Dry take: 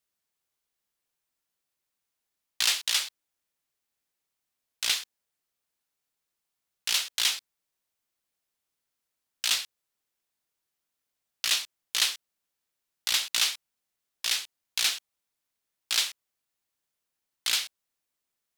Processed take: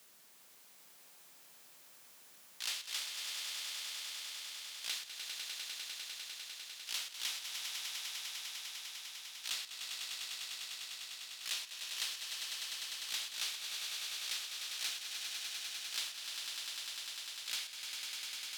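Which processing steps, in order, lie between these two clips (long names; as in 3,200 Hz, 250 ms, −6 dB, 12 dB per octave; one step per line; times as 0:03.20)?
high-pass filter 99 Hz 24 dB per octave
mains-hum notches 50/100/150 Hz
volume swells 353 ms
on a send: echo that builds up and dies away 100 ms, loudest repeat 5, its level −10 dB
on the sum: multiband upward and downward compressor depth 70%
level +1 dB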